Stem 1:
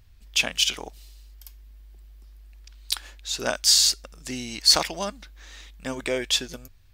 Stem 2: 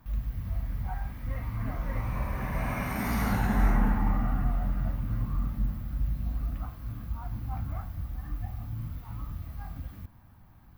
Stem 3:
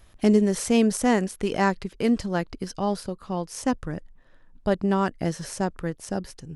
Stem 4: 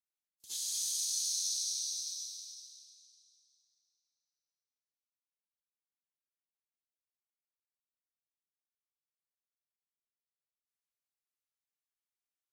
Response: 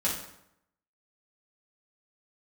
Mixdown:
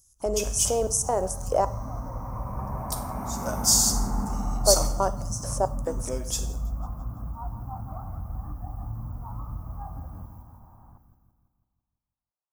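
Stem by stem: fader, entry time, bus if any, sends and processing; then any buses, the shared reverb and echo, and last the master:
-3.5 dB, 0.00 s, no bus, send -7.5 dB, echo send -23 dB, treble shelf 7.9 kHz +7 dB; upward expansion 1.5:1, over -41 dBFS
+1.5 dB, 0.20 s, bus A, no send, echo send -7 dB, none
+2.0 dB, 0.00 s, muted 1.65–4.02 s, no bus, send -19.5 dB, no echo send, peak limiter -16.5 dBFS, peak gain reduction 9.5 dB; LFO high-pass square 2.3 Hz 580–6300 Hz
-1.5 dB, 0.00 s, bus A, no send, no echo send, none
bus A: 0.0 dB, FFT filter 360 Hz 0 dB, 910 Hz +10 dB, 4.6 kHz -15 dB; compression, threshold -32 dBFS, peak gain reduction 15 dB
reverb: on, RT60 0.75 s, pre-delay 3 ms
echo: feedback delay 167 ms, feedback 55%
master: high-order bell 2.7 kHz -16 dB

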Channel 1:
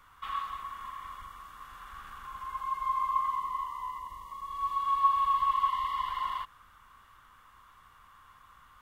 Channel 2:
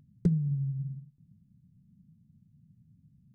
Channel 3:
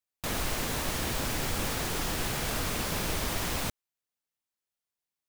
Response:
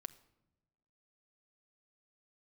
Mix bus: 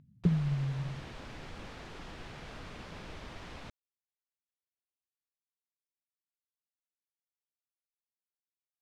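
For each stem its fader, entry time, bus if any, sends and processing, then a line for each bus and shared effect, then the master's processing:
mute
-1.5 dB, 0.00 s, no send, none
-13.5 dB, 0.00 s, no send, none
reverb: none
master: low-pass 3.7 kHz 12 dB/octave

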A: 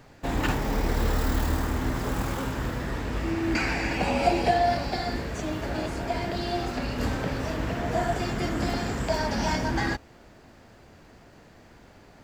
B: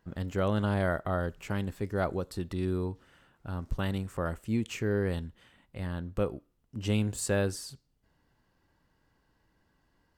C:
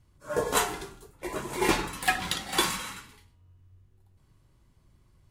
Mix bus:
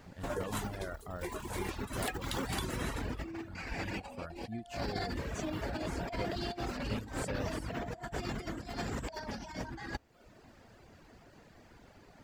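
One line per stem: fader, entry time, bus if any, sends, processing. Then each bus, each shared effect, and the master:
-7.0 dB, 0.00 s, no send, compressor with a negative ratio -30 dBFS, ratio -0.5
-11.5 dB, 0.00 s, no send, none
-1.5 dB, 0.00 s, no send, compression 12:1, threshold -34 dBFS, peak gain reduction 16 dB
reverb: none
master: reverb removal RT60 0.81 s

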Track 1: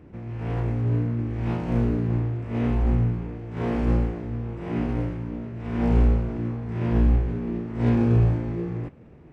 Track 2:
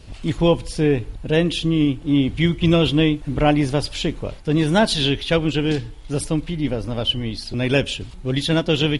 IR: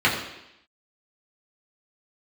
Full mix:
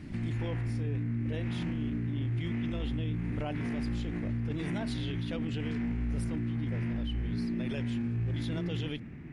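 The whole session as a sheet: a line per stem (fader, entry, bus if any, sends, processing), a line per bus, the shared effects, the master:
+0.5 dB, 0.00 s, no send, ten-band graphic EQ 125 Hz +4 dB, 250 Hz +8 dB, 500 Hz -11 dB, 1 kHz -4 dB, 2 kHz +11 dB; compression, threshold -18 dBFS, peak gain reduction 8 dB
-12.0 dB, 0.00 s, no send, none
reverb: none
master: peak limiter -26.5 dBFS, peak gain reduction 16 dB

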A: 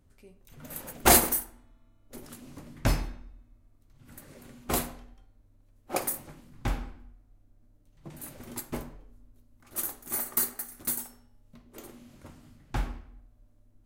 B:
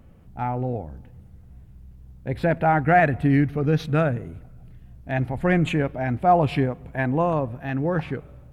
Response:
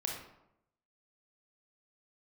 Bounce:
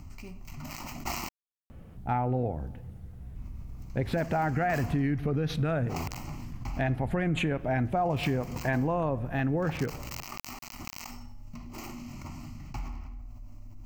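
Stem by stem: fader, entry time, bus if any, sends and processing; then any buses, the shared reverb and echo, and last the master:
-10.5 dB, 0.00 s, muted 1.29–3.35 s, no send, dead-time distortion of 0.13 ms; static phaser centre 2.4 kHz, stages 8; level flattener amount 70%
+2.0 dB, 1.70 s, send -20.5 dB, peak limiter -16.5 dBFS, peak gain reduction 9.5 dB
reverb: on, RT60 0.80 s, pre-delay 24 ms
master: compression 3:1, threshold -26 dBFS, peak gain reduction 7 dB

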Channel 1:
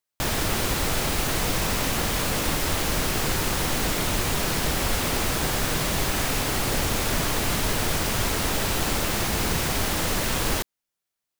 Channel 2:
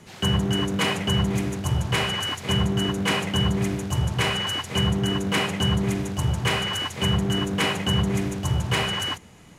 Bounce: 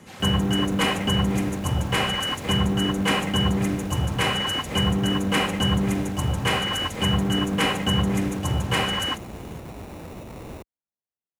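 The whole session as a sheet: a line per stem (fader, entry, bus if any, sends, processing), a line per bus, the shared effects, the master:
-8.5 dB, 0.00 s, no send, median filter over 25 samples; sample-rate reducer 3.2 kHz
+1.5 dB, 0.00 s, no send, comb 3.8 ms, depth 36%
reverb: none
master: high-pass 53 Hz; peaking EQ 4.6 kHz -4.5 dB 1.4 oct

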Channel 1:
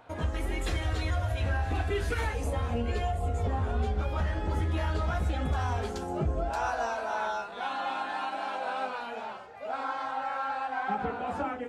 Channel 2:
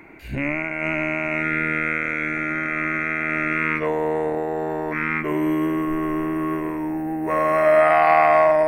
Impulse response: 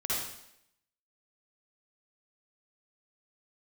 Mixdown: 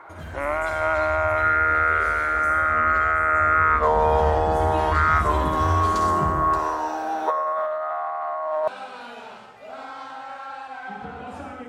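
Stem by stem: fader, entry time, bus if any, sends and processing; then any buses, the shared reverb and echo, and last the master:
3.44 s -14.5 dB -> 4.01 s -4.5 dB -> 6.26 s -4.5 dB -> 6.59 s -11 dB, 0.00 s, send -4.5 dB, treble shelf 2.4 kHz +9 dB; compression 2.5:1, threshold -32 dBFS, peak gain reduction 5.5 dB
+1.5 dB, 0.00 s, no send, high-pass 550 Hz 24 dB/octave; resonant high shelf 1.8 kHz -12 dB, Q 3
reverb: on, RT60 0.75 s, pre-delay 48 ms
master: compressor with a negative ratio -21 dBFS, ratio -1; peaking EQ 140 Hz +6 dB 2.2 oct

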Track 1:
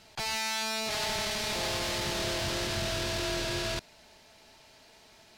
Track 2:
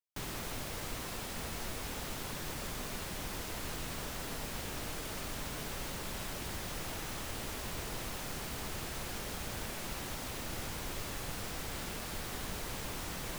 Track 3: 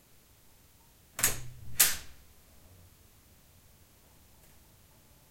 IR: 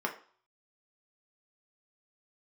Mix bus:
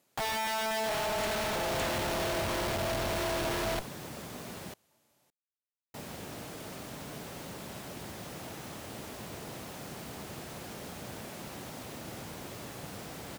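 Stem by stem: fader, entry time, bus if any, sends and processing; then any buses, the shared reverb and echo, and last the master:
+2.5 dB, 0.00 s, no send, sorted samples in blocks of 8 samples; low-pass 4.1 kHz 24 dB/octave; Schmitt trigger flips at -44 dBFS
-4.5 dB, 1.55 s, muted 4.74–5.94 s, no send, high-pass 130 Hz 12 dB/octave; bass shelf 410 Hz +8 dB
-9.0 dB, 0.00 s, no send, high-pass 200 Hz 12 dB/octave; low-pass that closes with the level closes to 2.8 kHz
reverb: none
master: peaking EQ 670 Hz +3.5 dB 0.8 oct

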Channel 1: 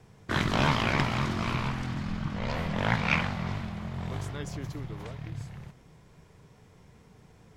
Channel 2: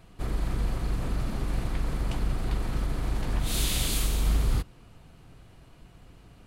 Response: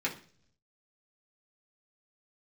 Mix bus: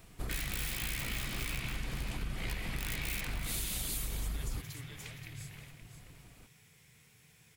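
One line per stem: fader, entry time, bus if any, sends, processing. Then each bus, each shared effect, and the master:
+0.5 dB, 0.00 s, send -10.5 dB, echo send -8 dB, tilt EQ +3.5 dB/octave; integer overflow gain 21 dB; FFT filter 150 Hz 0 dB, 260 Hz -12 dB, 1 kHz -15 dB, 2.4 kHz -4 dB, 5.8 kHz -10 dB, 11 kHz -3 dB
-4.0 dB, 0.00 s, no send, no echo send, reverb removal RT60 0.51 s; treble shelf 8.6 kHz +12 dB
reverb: on, RT60 0.50 s, pre-delay 3 ms
echo: delay 527 ms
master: compression, threshold -33 dBFS, peak gain reduction 9.5 dB

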